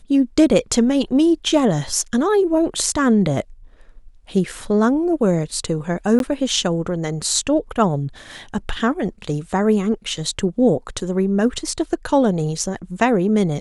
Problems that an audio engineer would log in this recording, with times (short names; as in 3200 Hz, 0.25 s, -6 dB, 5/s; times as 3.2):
6.19–6.2 gap 12 ms